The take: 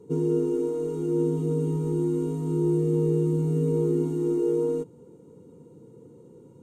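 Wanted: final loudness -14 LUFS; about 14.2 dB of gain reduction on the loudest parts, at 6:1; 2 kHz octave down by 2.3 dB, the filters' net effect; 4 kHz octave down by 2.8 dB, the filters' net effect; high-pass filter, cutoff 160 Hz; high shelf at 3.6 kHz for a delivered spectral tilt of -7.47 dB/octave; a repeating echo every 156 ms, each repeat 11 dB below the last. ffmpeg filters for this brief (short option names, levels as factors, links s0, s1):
-af "highpass=160,equalizer=f=2000:t=o:g=-3,highshelf=f=3600:g=4,equalizer=f=4000:t=o:g=-5.5,acompressor=threshold=0.0141:ratio=6,aecho=1:1:156|312|468:0.282|0.0789|0.0221,volume=20"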